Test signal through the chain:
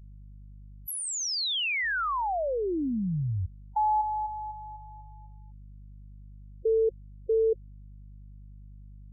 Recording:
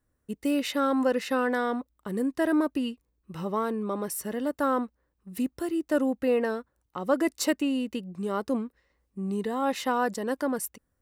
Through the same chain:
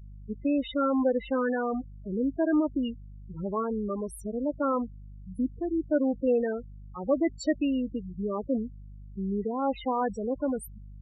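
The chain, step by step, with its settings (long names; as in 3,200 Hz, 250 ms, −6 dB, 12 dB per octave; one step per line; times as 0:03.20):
mains hum 50 Hz, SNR 16 dB
spectral peaks only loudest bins 8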